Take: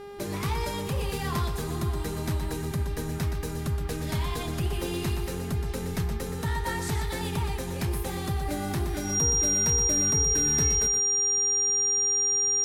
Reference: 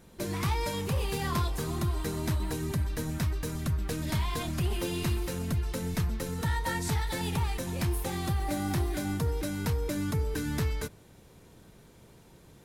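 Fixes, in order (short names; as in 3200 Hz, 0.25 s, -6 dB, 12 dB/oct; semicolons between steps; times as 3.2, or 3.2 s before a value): de-hum 404.1 Hz, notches 14; notch 5700 Hz, Q 30; inverse comb 0.121 s -8.5 dB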